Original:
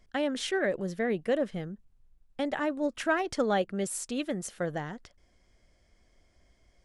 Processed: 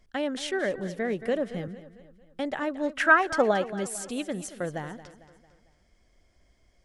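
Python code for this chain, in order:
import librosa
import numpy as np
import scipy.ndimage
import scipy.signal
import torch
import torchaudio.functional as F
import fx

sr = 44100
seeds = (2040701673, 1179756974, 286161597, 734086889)

y = fx.peak_eq(x, sr, hz=fx.line((2.77, 2700.0), (3.5, 690.0)), db=14.0, octaves=1.0, at=(2.77, 3.5), fade=0.02)
y = fx.echo_feedback(y, sr, ms=225, feedback_pct=48, wet_db=-15)
y = fx.band_squash(y, sr, depth_pct=40, at=(1.21, 1.68))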